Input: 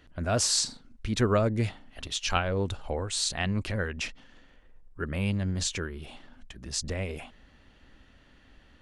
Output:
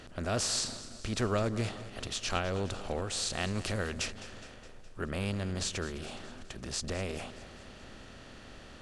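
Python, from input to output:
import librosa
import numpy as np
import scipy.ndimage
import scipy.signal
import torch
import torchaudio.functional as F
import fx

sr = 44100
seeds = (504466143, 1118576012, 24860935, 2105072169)

y = fx.bin_compress(x, sr, power=0.6)
y = fx.high_shelf(y, sr, hz=4500.0, db=6.5, at=(3.33, 4.06))
y = fx.echo_feedback(y, sr, ms=208, feedback_pct=59, wet_db=-16)
y = y * 10.0 ** (-8.0 / 20.0)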